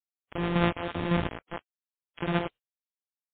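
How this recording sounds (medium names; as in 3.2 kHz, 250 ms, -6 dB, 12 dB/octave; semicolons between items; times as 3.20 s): a buzz of ramps at a fixed pitch in blocks of 256 samples; chopped level 1.8 Hz, depth 65%, duty 30%; a quantiser's noise floor 6-bit, dither none; MP3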